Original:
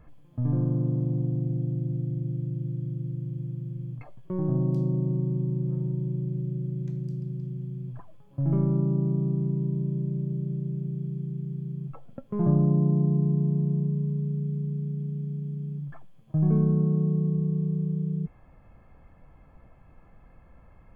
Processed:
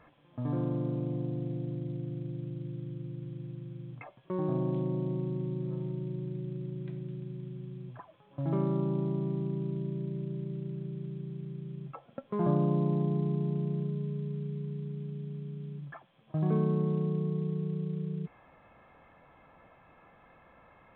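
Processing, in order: HPF 690 Hz 6 dB/oct; gain +6 dB; µ-law 64 kbps 8000 Hz

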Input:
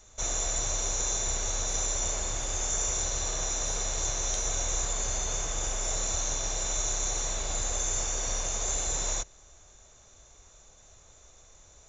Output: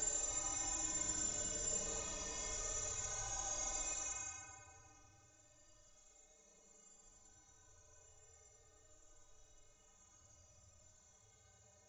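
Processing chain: metallic resonator 91 Hz, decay 0.53 s, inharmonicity 0.03; Paulstretch 15×, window 0.05 s, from 8.95; gain +1 dB

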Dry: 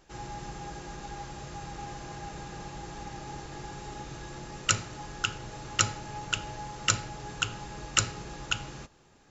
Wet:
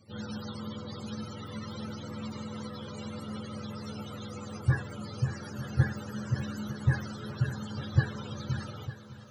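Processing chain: spectrum mirrored in octaves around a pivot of 420 Hz; multi-head echo 0.301 s, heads second and third, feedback 41%, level -15 dB; gain +3 dB

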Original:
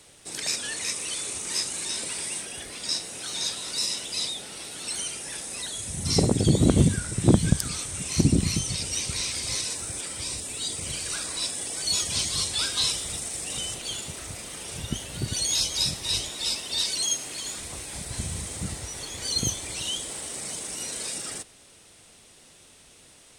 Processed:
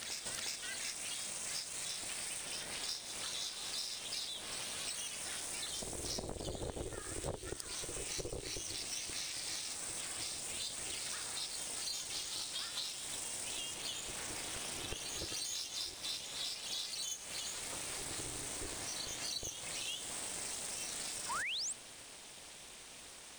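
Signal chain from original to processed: median filter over 3 samples; added harmonics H 8 -25 dB, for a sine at -5.5 dBFS; HPF 330 Hz 6 dB/oct; ring modulator 210 Hz; reverse echo 0.362 s -12.5 dB; compressor 10:1, threshold -43 dBFS, peak gain reduction 23.5 dB; painted sound rise, 21.29–21.73, 870–9000 Hz -44 dBFS; gain +5 dB

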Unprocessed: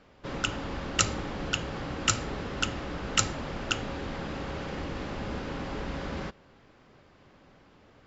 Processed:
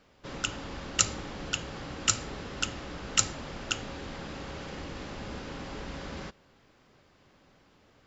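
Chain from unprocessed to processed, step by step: high shelf 4200 Hz +10 dB; gain -5 dB

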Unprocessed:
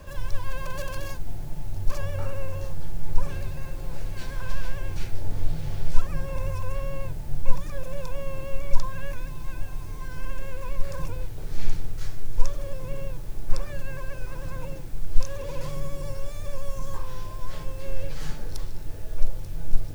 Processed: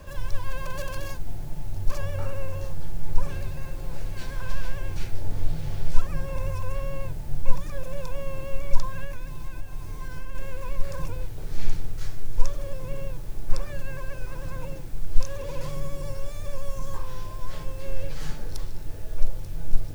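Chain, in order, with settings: 9.04–10.35 compressor 4:1, threshold -24 dBFS, peak gain reduction 6 dB

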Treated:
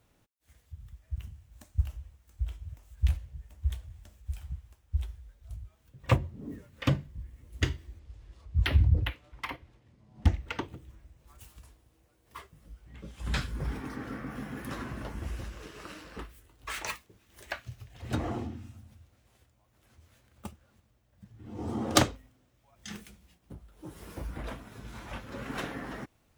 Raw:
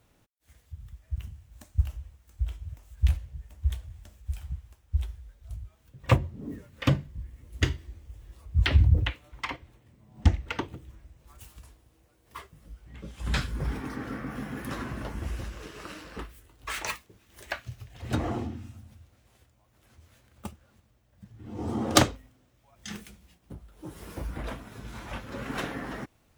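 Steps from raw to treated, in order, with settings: 7.99–10.27 decimation joined by straight lines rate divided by 3×; gain -3 dB

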